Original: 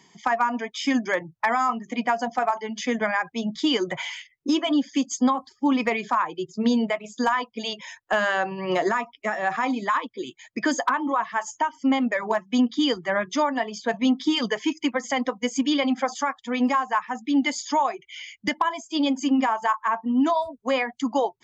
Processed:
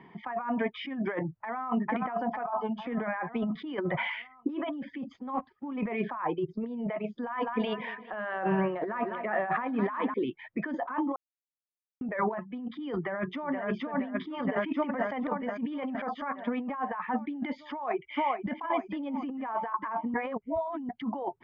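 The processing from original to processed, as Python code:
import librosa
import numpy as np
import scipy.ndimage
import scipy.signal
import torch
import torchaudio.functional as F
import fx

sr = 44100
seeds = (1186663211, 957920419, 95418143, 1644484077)

y = fx.echo_throw(x, sr, start_s=1.37, length_s=0.45, ms=450, feedback_pct=55, wet_db=-14.0)
y = fx.fixed_phaser(y, sr, hz=820.0, stages=4, at=(2.43, 2.85), fade=0.02)
y = fx.law_mismatch(y, sr, coded='A', at=(5.12, 5.77), fade=0.02)
y = fx.echo_feedback(y, sr, ms=204, feedback_pct=52, wet_db=-19.0, at=(7.19, 10.14))
y = fx.echo_throw(y, sr, start_s=12.95, length_s=0.7, ms=470, feedback_pct=60, wet_db=-2.0)
y = fx.echo_throw(y, sr, start_s=17.65, length_s=0.86, ms=450, feedback_pct=50, wet_db=-11.0)
y = fx.edit(y, sr, fx.silence(start_s=11.16, length_s=0.85),
    fx.reverse_span(start_s=20.14, length_s=0.75), tone=tone)
y = fx.over_compress(y, sr, threshold_db=-31.0, ratio=-1.0)
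y = scipy.signal.sosfilt(scipy.signal.bessel(6, 1600.0, 'lowpass', norm='mag', fs=sr, output='sos'), y)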